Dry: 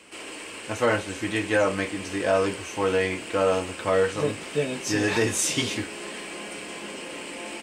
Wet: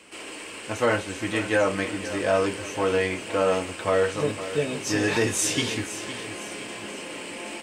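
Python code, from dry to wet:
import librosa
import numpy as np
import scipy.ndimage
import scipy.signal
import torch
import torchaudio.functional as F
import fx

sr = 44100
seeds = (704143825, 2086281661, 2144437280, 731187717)

y = fx.echo_feedback(x, sr, ms=511, feedback_pct=46, wet_db=-13.0)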